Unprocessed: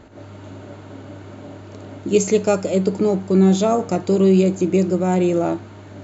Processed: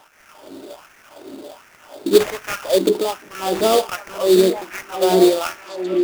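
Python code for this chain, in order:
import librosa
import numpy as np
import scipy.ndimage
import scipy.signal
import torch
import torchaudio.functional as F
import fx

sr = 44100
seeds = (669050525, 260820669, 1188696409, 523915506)

p1 = fx.dynamic_eq(x, sr, hz=1300.0, q=0.88, threshold_db=-35.0, ratio=4.0, max_db=6)
p2 = fx.filter_lfo_highpass(p1, sr, shape='sine', hz=1.3, low_hz=300.0, high_hz=1900.0, q=2.9)
p3 = fx.sample_hold(p2, sr, seeds[0], rate_hz=4100.0, jitter_pct=20)
p4 = p3 + fx.echo_stepped(p3, sr, ms=743, hz=280.0, octaves=1.4, feedback_pct=70, wet_db=-3.0, dry=0)
y = p4 * 10.0 ** (-3.0 / 20.0)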